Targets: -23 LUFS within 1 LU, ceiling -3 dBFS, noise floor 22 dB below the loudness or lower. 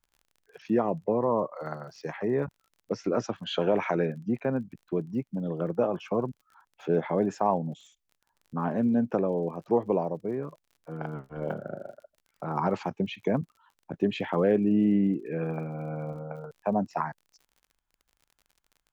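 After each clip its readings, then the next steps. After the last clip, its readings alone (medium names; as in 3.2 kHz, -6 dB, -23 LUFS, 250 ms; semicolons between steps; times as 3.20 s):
tick rate 37 per s; loudness -29.5 LUFS; peak level -11.0 dBFS; loudness target -23.0 LUFS
-> de-click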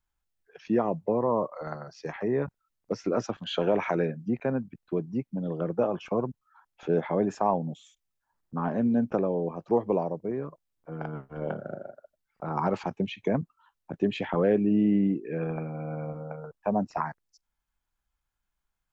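tick rate 0 per s; loudness -29.5 LUFS; peak level -11.0 dBFS; loudness target -23.0 LUFS
-> trim +6.5 dB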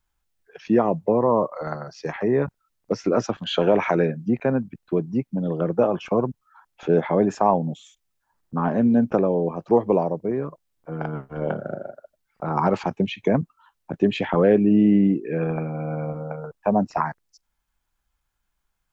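loudness -23.0 LUFS; peak level -4.5 dBFS; noise floor -76 dBFS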